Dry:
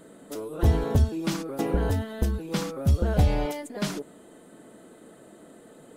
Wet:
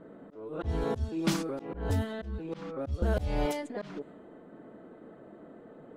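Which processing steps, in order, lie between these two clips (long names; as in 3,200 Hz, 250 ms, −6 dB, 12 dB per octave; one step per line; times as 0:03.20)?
volume swells 275 ms
low-pass that shuts in the quiet parts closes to 1,300 Hz, open at −24.5 dBFS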